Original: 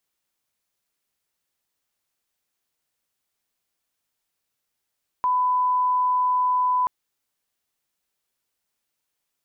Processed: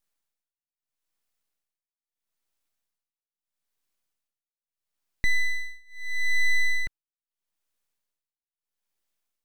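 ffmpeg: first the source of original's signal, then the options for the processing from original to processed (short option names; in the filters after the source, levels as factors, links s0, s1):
-f lavfi -i "sine=f=1000:d=1.63:r=44100,volume=0.06dB"
-af "lowshelf=f=590:t=q:w=3:g=-6.5,aeval=exprs='abs(val(0))':c=same,tremolo=f=0.77:d=0.98"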